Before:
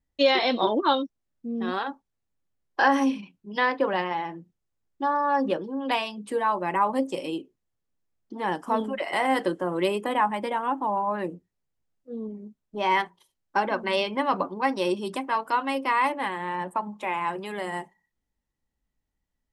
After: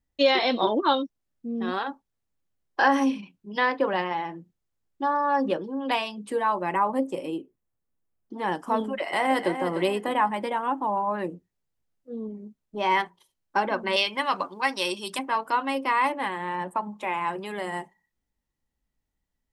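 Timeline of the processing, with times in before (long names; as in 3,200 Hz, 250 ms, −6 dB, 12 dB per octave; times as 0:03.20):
0:06.80–0:08.33: parametric band 4,500 Hz −9.5 dB 1.7 octaves
0:08.95–0:09.53: delay throw 300 ms, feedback 35%, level −9 dB
0:13.96–0:15.19: tilt shelving filter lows −8.5 dB, about 1,100 Hz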